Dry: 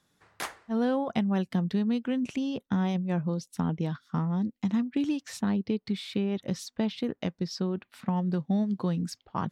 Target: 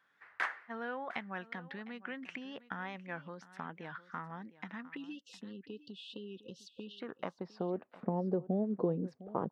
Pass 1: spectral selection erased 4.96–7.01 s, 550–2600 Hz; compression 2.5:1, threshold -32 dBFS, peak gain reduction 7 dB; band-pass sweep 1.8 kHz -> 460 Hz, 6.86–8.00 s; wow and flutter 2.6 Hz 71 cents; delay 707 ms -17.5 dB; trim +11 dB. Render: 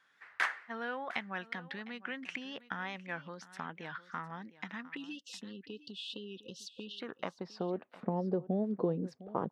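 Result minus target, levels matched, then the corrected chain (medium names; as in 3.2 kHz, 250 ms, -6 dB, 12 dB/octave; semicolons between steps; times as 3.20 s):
4 kHz band +5.5 dB
spectral selection erased 4.96–7.01 s, 550–2600 Hz; compression 2.5:1, threshold -32 dBFS, peak gain reduction 7 dB; treble shelf 2.6 kHz -10.5 dB; band-pass sweep 1.8 kHz -> 460 Hz, 6.86–8.00 s; wow and flutter 2.6 Hz 71 cents; delay 707 ms -17.5 dB; trim +11 dB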